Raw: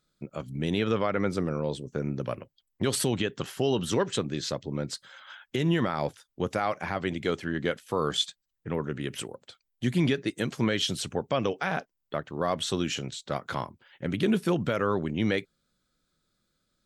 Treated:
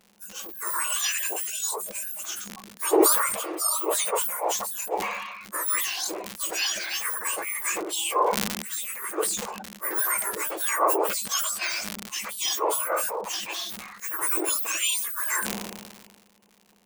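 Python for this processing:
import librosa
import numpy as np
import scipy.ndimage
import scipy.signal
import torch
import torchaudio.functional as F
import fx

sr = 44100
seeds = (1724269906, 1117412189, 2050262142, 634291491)

y = fx.octave_mirror(x, sr, pivot_hz=1900.0)
y = fx.dmg_crackle(y, sr, seeds[0], per_s=130.0, level_db=-48.0)
y = fx.sustainer(y, sr, db_per_s=38.0)
y = y * librosa.db_to_amplitude(5.5)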